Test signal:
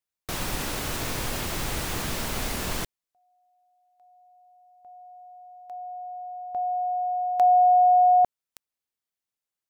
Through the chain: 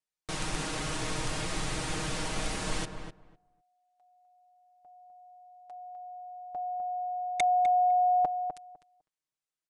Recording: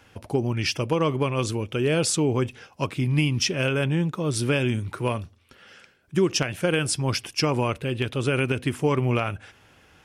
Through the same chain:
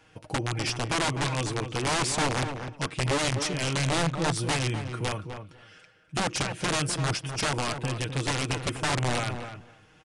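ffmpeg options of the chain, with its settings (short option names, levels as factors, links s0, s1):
-filter_complex "[0:a]aecho=1:1:6.4:0.66,aeval=exprs='(mod(6.31*val(0)+1,2)-1)/6.31':c=same,asplit=2[s0][s1];[s1]adelay=252,lowpass=f=1600:p=1,volume=0.447,asplit=2[s2][s3];[s3]adelay=252,lowpass=f=1600:p=1,volume=0.15,asplit=2[s4][s5];[s5]adelay=252,lowpass=f=1600:p=1,volume=0.15[s6];[s0][s2][s4][s6]amix=inputs=4:normalize=0,aresample=22050,aresample=44100,volume=0.562"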